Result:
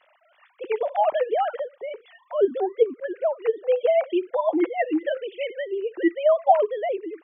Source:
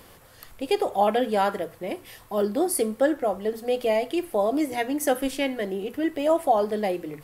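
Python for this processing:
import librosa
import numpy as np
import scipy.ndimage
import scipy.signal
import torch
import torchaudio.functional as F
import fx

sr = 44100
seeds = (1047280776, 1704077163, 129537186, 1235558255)

y = fx.sine_speech(x, sr)
y = fx.auto_swell(y, sr, attack_ms=211.0, at=(2.88, 3.37))
y = fx.comb(y, sr, ms=5.9, depth=0.64, at=(4.28, 5.17))
y = y * 10.0 ** (1.5 / 20.0)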